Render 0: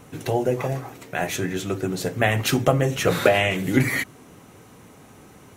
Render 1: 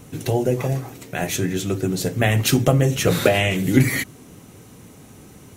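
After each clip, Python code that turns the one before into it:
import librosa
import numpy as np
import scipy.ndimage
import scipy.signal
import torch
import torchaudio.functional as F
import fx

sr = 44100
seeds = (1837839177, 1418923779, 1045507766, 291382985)

y = fx.peak_eq(x, sr, hz=1100.0, db=-8.5, octaves=2.8)
y = y * 10.0 ** (6.0 / 20.0)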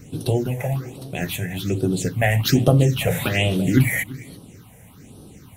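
y = x + 10.0 ** (-18.0 / 20.0) * np.pad(x, (int(338 * sr / 1000.0), 0))[:len(x)]
y = fx.phaser_stages(y, sr, stages=6, low_hz=300.0, high_hz=2100.0, hz=1.2, feedback_pct=20)
y = y * 10.0 ** (1.0 / 20.0)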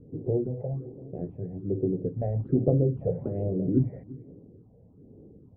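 y = fx.ladder_lowpass(x, sr, hz=550.0, resonance_pct=45)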